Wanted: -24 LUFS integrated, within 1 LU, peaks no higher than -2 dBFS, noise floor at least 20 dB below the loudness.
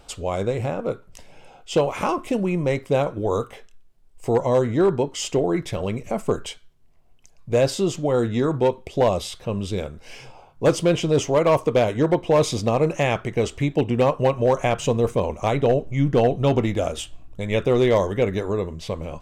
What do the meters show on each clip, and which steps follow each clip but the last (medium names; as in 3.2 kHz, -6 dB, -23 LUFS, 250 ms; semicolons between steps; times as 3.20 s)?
clipped samples 0.5%; clipping level -11.0 dBFS; loudness -22.0 LUFS; peak level -11.0 dBFS; loudness target -24.0 LUFS
-> clip repair -11 dBFS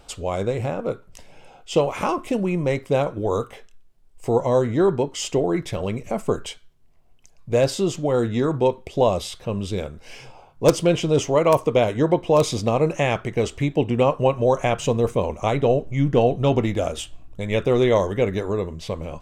clipped samples 0.0%; loudness -22.0 LUFS; peak level -2.0 dBFS; loudness target -24.0 LUFS
-> trim -2 dB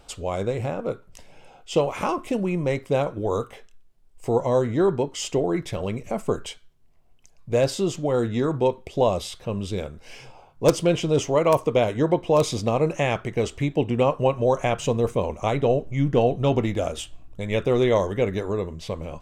loudness -24.0 LUFS; peak level -4.0 dBFS; noise floor -53 dBFS